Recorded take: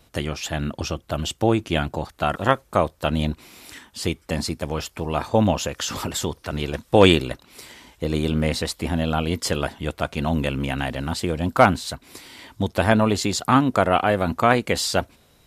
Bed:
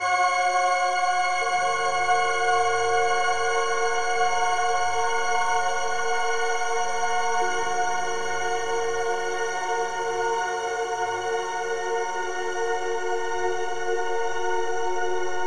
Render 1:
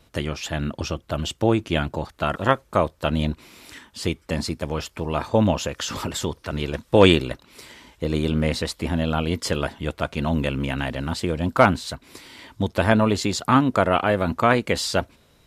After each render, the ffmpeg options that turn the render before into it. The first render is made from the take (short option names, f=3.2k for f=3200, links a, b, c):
-af "highshelf=f=7.8k:g=-6.5,bandreject=f=750:w=12"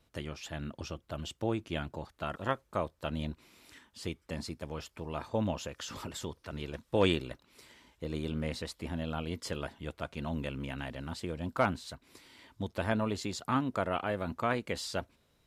-af "volume=-13dB"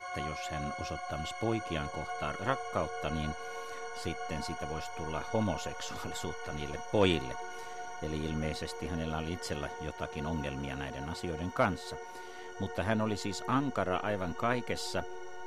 -filter_complex "[1:a]volume=-18dB[a];[0:a][a]amix=inputs=2:normalize=0"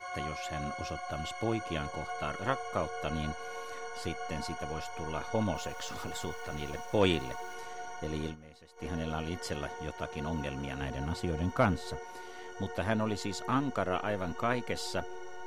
-filter_complex "[0:a]asettb=1/sr,asplit=3[a][b][c];[a]atrim=end=5.554[d];[b]atrim=start=5.55:end=7.54,asetpts=PTS-STARTPTS,afade=t=in:d=0.004:c=qsin,afade=t=out:st=1.986:d=0.004:c=qsin,aeval=exprs='val(0)*gte(abs(val(0)),0.00299)':c=same[e];[c]atrim=start=7.536[f];[d][e]acrossfade=d=0.004:c1=hsin:c2=qsin[g];[g][f]acrossfade=d=0.004:c1=qsin:c2=hsin,asettb=1/sr,asplit=3[h][i][j];[h]atrim=end=10.814[k];[i]atrim=start=10.81:end=11.99,asetpts=PTS-STARTPTS,afade=t=in:d=0.004:c=qsin,afade=t=out:st=1.176:d=0.004:c=qsin,lowshelf=f=240:g=7.5[l];[j]atrim=start=11.986[m];[k][l]acrossfade=d=0.004:c1=hsin:c2=qsin[n];[n][m]acrossfade=d=0.004:c1=qsin:c2=hsin,asplit=3[o][p][q];[o]atrim=end=8.36,asetpts=PTS-STARTPTS,afade=t=out:st=8.22:d=0.14:c=qsin:silence=0.11885[r];[p]atrim=start=8.36:end=8.76,asetpts=PTS-STARTPTS,volume=-18.5dB[s];[q]atrim=start=8.76,asetpts=PTS-STARTPTS,afade=t=in:d=0.14:c=qsin:silence=0.11885[t];[r][s][t]concat=n=3:v=0:a=1"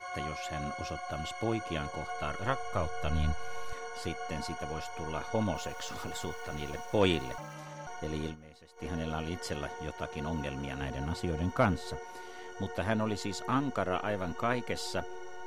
-filter_complex "[0:a]asettb=1/sr,asplit=3[a][b][c];[a]atrim=end=2.014[d];[b]atrim=start=2.01:end=3.73,asetpts=PTS-STARTPTS,afade=t=in:d=0.004:c=qsin,afade=t=out:st=1.716:d=0.004:c=qsin,asubboost=boost=10.5:cutoff=120[e];[c]atrim=start=3.726[f];[d][e]acrossfade=d=0.004:c1=hsin:c2=qsin[g];[g][f]acrossfade=d=0.004:c1=qsin:c2=hsin,asettb=1/sr,asplit=3[h][i][j];[h]atrim=end=7.384[k];[i]atrim=start=7.38:end=7.87,asetpts=PTS-STARTPTS,afade=t=in:d=0.004:c=qsin,afade=t=out:st=0.486:d=0.004:c=qsin,aeval=exprs='val(0)*sin(2*PI*150*n/s)':c=same[l];[j]atrim=start=7.866[m];[k][l]acrossfade=d=0.004:c1=hsin:c2=qsin[n];[n][m]acrossfade=d=0.004:c1=qsin:c2=hsin"